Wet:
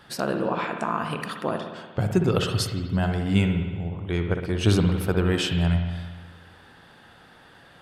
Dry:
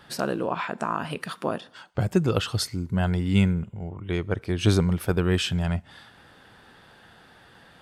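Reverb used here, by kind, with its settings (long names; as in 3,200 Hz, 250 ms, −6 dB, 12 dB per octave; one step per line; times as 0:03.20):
spring reverb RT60 1.4 s, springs 58 ms, chirp 30 ms, DRR 4.5 dB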